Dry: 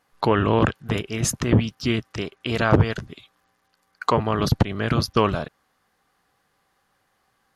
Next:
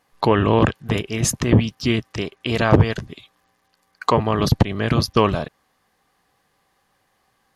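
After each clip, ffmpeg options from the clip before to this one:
ffmpeg -i in.wav -af "equalizer=frequency=1400:width=7.4:gain=-8,volume=3dB" out.wav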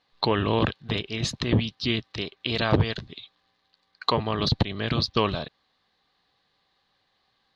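ffmpeg -i in.wav -af "lowpass=frequency=4000:width_type=q:width=5.1,volume=-7.5dB" out.wav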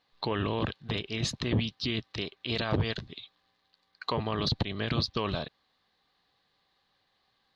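ffmpeg -i in.wav -af "alimiter=limit=-15.5dB:level=0:latency=1:release=45,volume=-2.5dB" out.wav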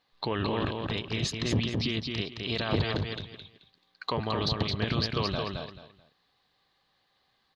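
ffmpeg -i in.wav -af "aecho=1:1:217|434|651:0.631|0.151|0.0363" out.wav

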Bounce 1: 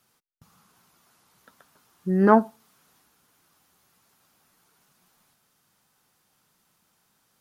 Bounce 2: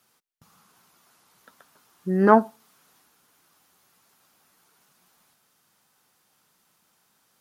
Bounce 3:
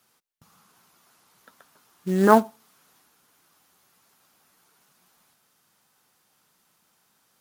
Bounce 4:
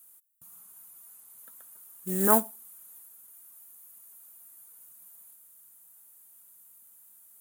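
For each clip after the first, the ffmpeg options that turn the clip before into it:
ffmpeg -i in.wav -af "lowshelf=frequency=150:gain=-8.5,volume=2dB" out.wav
ffmpeg -i in.wav -af "acrusher=bits=5:mode=log:mix=0:aa=0.000001" out.wav
ffmpeg -i in.wav -af "aexciter=amount=11.7:drive=6.4:freq=7600,volume=-8.5dB" out.wav

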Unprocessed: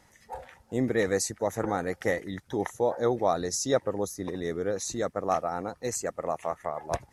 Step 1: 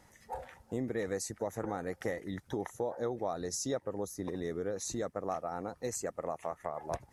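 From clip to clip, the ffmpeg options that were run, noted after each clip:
ffmpeg -i in.wav -af "equalizer=frequency=3400:width=0.48:gain=-3.5,acompressor=threshold=-34dB:ratio=3" out.wav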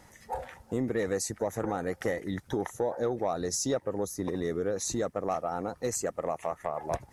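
ffmpeg -i in.wav -af "asoftclip=type=tanh:threshold=-23dB,volume=6dB" out.wav

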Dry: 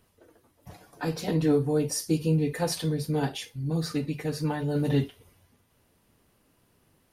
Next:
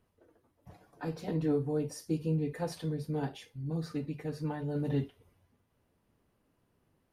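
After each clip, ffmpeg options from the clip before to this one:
ffmpeg -i in.wav -af "highshelf=frequency=2500:gain=-10,volume=-6.5dB" out.wav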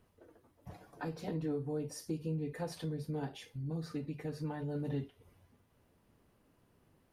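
ffmpeg -i in.wav -af "acompressor=threshold=-46dB:ratio=2,volume=4dB" out.wav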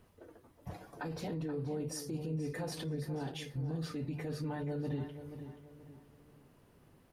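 ffmpeg -i in.wav -filter_complex "[0:a]alimiter=level_in=12.5dB:limit=-24dB:level=0:latency=1:release=22,volume=-12.5dB,asplit=2[link_01][link_02];[link_02]adelay=480,lowpass=frequency=3200:poles=1,volume=-10dB,asplit=2[link_03][link_04];[link_04]adelay=480,lowpass=frequency=3200:poles=1,volume=0.38,asplit=2[link_05][link_06];[link_06]adelay=480,lowpass=frequency=3200:poles=1,volume=0.38,asplit=2[link_07][link_08];[link_08]adelay=480,lowpass=frequency=3200:poles=1,volume=0.38[link_09];[link_03][link_05][link_07][link_09]amix=inputs=4:normalize=0[link_10];[link_01][link_10]amix=inputs=2:normalize=0,volume=5dB" out.wav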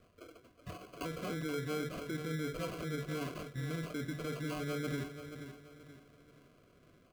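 ffmpeg -i in.wav -af "acrusher=samples=24:mix=1:aa=0.000001,asuperstop=centerf=860:order=20:qfactor=4.1,bass=frequency=250:gain=-5,treble=frequency=4000:gain=-4,volume=2dB" out.wav

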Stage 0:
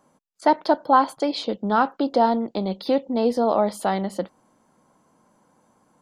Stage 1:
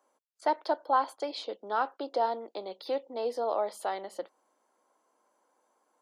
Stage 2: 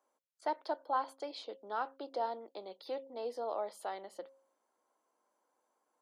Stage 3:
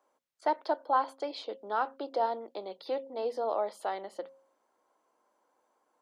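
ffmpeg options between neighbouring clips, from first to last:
ffmpeg -i in.wav -af "highpass=frequency=360:width=0.5412,highpass=frequency=360:width=1.3066,volume=-9dB" out.wav
ffmpeg -i in.wav -af "bandreject=frequency=269.9:width_type=h:width=4,bandreject=frequency=539.8:width_type=h:width=4,volume=-7.5dB" out.wav
ffmpeg -i in.wav -af "highshelf=frequency=6400:gain=-9,bandreject=frequency=60:width_type=h:width=6,bandreject=frequency=120:width_type=h:width=6,bandreject=frequency=180:width_type=h:width=6,bandreject=frequency=240:width_type=h:width=6,volume=6.5dB" out.wav

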